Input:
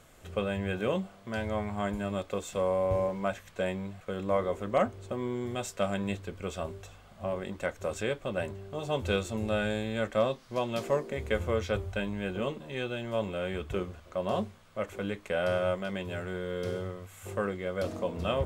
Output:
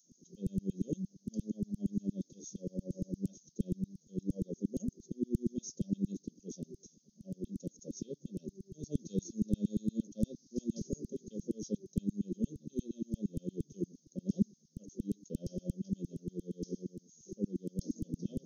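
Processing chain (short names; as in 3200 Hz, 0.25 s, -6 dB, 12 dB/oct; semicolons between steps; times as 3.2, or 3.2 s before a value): FFT band-pass 140–6700 Hz; LFO high-pass saw down 8.6 Hz 280–2800 Hz; inverse Chebyshev band-stop 830–2300 Hz, stop band 80 dB; gain +15 dB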